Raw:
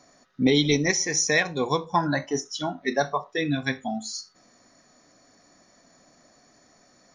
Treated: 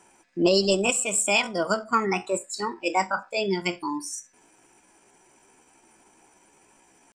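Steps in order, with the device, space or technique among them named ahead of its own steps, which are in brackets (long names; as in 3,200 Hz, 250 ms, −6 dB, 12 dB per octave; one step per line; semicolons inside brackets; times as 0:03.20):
chipmunk voice (pitch shifter +5 semitones)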